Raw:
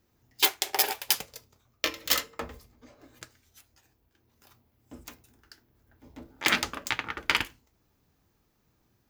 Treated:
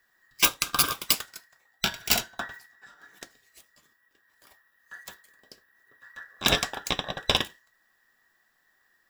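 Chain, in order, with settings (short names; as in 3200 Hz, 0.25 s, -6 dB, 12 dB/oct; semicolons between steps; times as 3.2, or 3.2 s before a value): band inversion scrambler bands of 2000 Hz; gain +2 dB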